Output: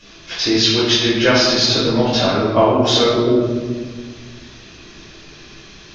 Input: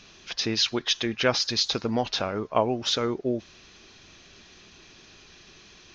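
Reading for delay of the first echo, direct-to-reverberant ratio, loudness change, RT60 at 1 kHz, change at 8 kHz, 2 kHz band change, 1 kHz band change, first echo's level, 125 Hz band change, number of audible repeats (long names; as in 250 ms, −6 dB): no echo audible, −9.5 dB, +11.0 dB, 1.4 s, can't be measured, +11.0 dB, +10.0 dB, no echo audible, +13.5 dB, no echo audible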